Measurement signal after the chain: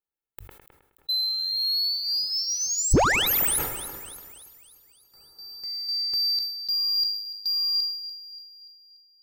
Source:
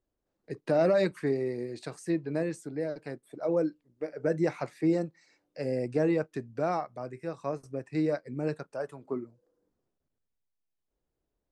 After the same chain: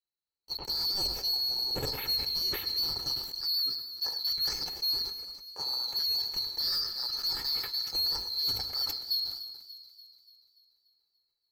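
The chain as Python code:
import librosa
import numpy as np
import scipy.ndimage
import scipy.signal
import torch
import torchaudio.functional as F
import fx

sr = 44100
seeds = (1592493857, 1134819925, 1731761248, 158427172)

y = fx.band_swap(x, sr, width_hz=4000)
y = fx.hum_notches(y, sr, base_hz=50, count=2)
y = y + 0.52 * np.pad(y, (int(2.3 * sr / 1000.0), 0))[:len(y)]
y = fx.rev_plate(y, sr, seeds[0], rt60_s=3.8, hf_ratio=0.35, predelay_ms=105, drr_db=16.0)
y = fx.rider(y, sr, range_db=5, speed_s=0.5)
y = fx.peak_eq(y, sr, hz=5700.0, db=-12.5, octaves=1.5)
y = fx.leveller(y, sr, passes=3)
y = fx.low_shelf(y, sr, hz=500.0, db=7.5)
y = fx.echo_split(y, sr, split_hz=2800.0, low_ms=105, high_ms=290, feedback_pct=52, wet_db=-12.5)
y = fx.sustainer(y, sr, db_per_s=64.0)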